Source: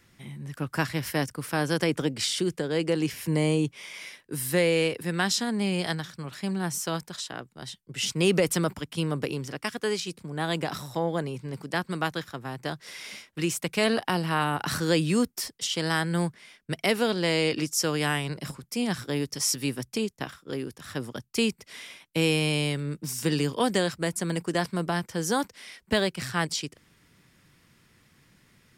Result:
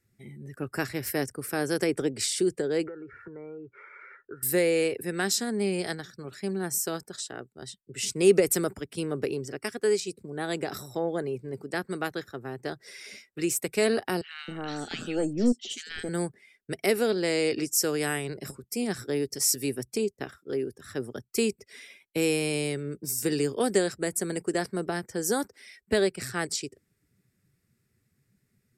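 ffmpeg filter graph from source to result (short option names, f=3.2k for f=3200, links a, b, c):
-filter_complex "[0:a]asettb=1/sr,asplit=3[a][b][c];[a]atrim=end=2.874[d];[b]atrim=start=2.87:end=4.43,asetpts=PTS-STARTPTS,afade=t=in:d=0.004:c=qsin,afade=t=out:st=1.556:d=0.004:c=qsin,aecho=1:1:2.2:0.37,atrim=end_sample=68796,acompressor=threshold=-39dB:ratio=6:attack=3.2:release=140:knee=1:detection=peak,lowpass=f=1.4k:t=q:w=8.7[e];[c]atrim=start=4.426[f];[d][e]acrossfade=d=0.004:c1=hsin:c2=qsin[g];[g][f]acrossfade=d=0.004:c1=qsin:c2=hsin,asettb=1/sr,asplit=3[h][i][j];[h]atrim=end=14.214[k];[i]atrim=start=14.21:end=16.09,asetpts=PTS-STARTPTS,afade=t=in:d=0.004:c=qsin,afade=t=out:st=1.876:d=0.004:c=qsin,highpass=f=130:w=0.5412,highpass=f=130:w=1.3066,equalizer=f=240:t=q:w=4:g=9,equalizer=f=1k:t=q:w=4:g=-7,equalizer=f=3.1k:t=q:w=4:g=8,equalizer=f=5.1k:t=q:w=4:g=-6,lowpass=f=7.6k:w=0.5412,lowpass=f=7.6k:w=1.3066,aeval=exprs='(tanh(5.01*val(0)+0.6)-tanh(0.6))/5.01':c=same,acrossover=split=1500|5800[l][m][n];[n]adelay=80[o];[l]adelay=270[p];[p][m][o]amix=inputs=3:normalize=0,atrim=end_sample=82908[q];[j]atrim=start=16.086[r];[k][q]acrossfade=d=0.004:c1=hsin:c2=qsin[s];[s][r]acrossfade=d=0.004:c1=qsin:c2=hsin,afftdn=nr=15:nf=-49,equalizer=f=160:t=o:w=0.33:g=-7,equalizer=f=400:t=o:w=0.33:g=9,equalizer=f=1k:t=o:w=0.33:g=-9,equalizer=f=3.15k:t=o:w=0.33:g=-8,equalizer=f=8k:t=o:w=0.33:g=7,equalizer=f=12.5k:t=o:w=0.33:g=11,volume=-2dB"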